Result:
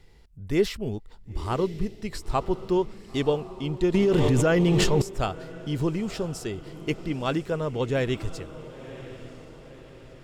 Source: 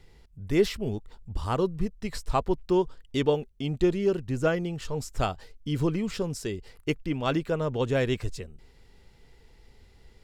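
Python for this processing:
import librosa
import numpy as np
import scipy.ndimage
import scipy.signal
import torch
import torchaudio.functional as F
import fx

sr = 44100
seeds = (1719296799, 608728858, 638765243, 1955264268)

y = fx.echo_diffused(x, sr, ms=1008, feedback_pct=50, wet_db=-14.5)
y = fx.env_flatten(y, sr, amount_pct=100, at=(3.94, 5.02))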